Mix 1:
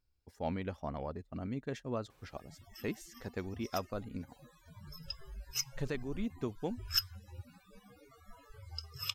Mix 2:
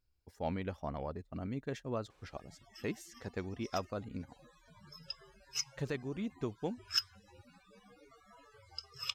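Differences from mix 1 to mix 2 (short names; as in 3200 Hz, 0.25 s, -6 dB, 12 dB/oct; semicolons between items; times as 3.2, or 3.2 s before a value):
background: add BPF 200–7800 Hz; master: add bell 240 Hz -2.5 dB 0.2 oct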